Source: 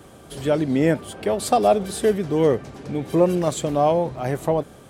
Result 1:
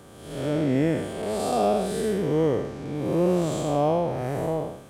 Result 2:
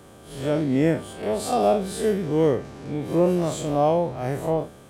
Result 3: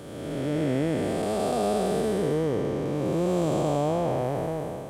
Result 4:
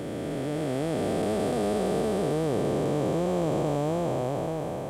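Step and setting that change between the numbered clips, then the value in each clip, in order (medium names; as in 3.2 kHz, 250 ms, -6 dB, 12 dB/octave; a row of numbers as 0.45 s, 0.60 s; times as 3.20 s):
spectral blur, width: 239 ms, 94 ms, 617 ms, 1560 ms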